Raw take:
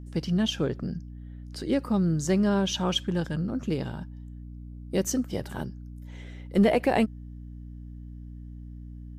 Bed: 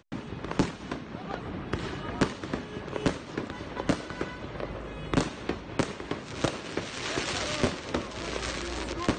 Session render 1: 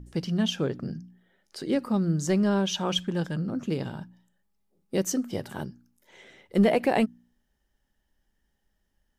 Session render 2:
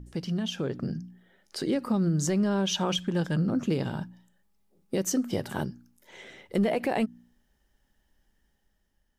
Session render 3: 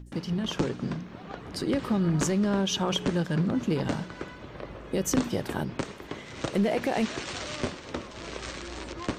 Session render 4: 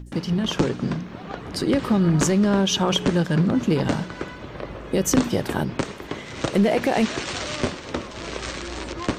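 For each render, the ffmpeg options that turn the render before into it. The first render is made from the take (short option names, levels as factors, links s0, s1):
-af "bandreject=f=60:t=h:w=4,bandreject=f=120:t=h:w=4,bandreject=f=180:t=h:w=4,bandreject=f=240:t=h:w=4,bandreject=f=300:t=h:w=4"
-af "alimiter=limit=0.075:level=0:latency=1:release=154,dynaudnorm=f=150:g=11:m=1.68"
-filter_complex "[1:a]volume=0.596[s0];[0:a][s0]amix=inputs=2:normalize=0"
-af "volume=2.11"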